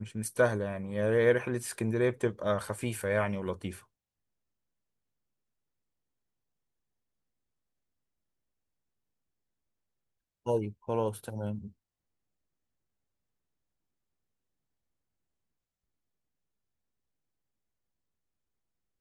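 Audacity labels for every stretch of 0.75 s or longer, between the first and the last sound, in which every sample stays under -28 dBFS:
3.680000	10.470000	silence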